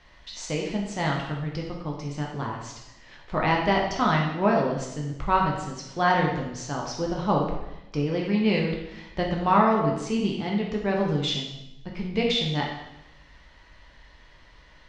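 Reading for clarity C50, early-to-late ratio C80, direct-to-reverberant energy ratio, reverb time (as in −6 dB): 3.5 dB, 6.0 dB, −1.5 dB, 0.90 s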